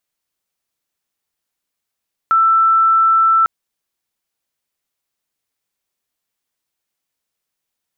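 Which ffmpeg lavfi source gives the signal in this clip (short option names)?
-f lavfi -i "sine=f=1330:d=1.15:r=44100,volume=9.06dB"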